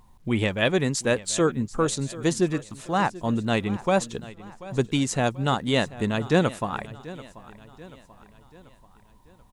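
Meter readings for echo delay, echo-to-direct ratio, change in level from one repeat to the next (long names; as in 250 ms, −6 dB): 736 ms, −17.0 dB, −6.5 dB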